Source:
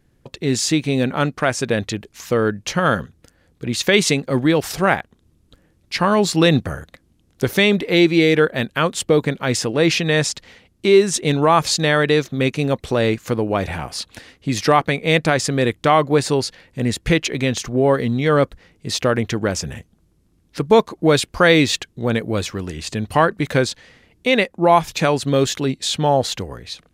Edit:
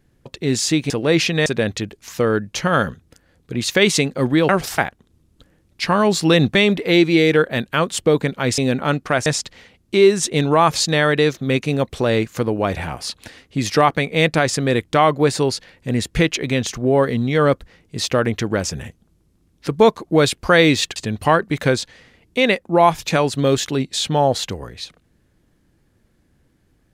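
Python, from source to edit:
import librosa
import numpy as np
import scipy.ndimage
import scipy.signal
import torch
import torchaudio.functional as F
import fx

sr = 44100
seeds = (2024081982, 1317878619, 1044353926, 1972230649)

y = fx.edit(x, sr, fx.swap(start_s=0.9, length_s=0.68, other_s=9.61, other_length_s=0.56),
    fx.reverse_span(start_s=4.61, length_s=0.29),
    fx.cut(start_s=6.67, length_s=0.91),
    fx.cut(start_s=21.87, length_s=0.98), tone=tone)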